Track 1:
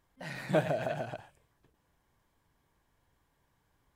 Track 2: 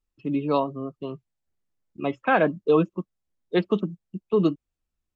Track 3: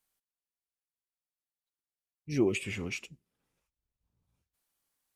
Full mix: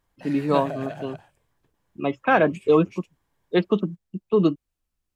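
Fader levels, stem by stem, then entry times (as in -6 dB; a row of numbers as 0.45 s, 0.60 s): -1.0 dB, +2.0 dB, -11.5 dB; 0.00 s, 0.00 s, 0.00 s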